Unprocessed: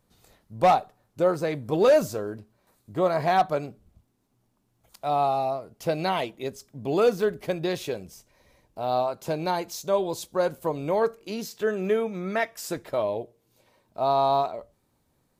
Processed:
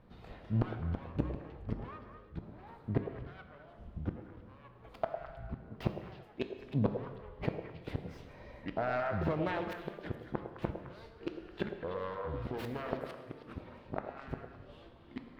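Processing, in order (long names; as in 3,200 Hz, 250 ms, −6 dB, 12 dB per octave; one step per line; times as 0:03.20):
phase distortion by the signal itself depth 0.54 ms
0:07.90–0:09.67: downward compressor 6 to 1, threshold −41 dBFS, peak gain reduction 17.5 dB
gate with flip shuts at −26 dBFS, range −39 dB
reverb whose tail is shaped and stops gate 380 ms falling, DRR 7 dB
delay with pitch and tempo change per echo 121 ms, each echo −5 semitones, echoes 3, each echo −6 dB
high-frequency loss of the air 400 metres
echo through a band-pass that steps 105 ms, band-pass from 540 Hz, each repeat 1.4 octaves, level −4 dB
level +9.5 dB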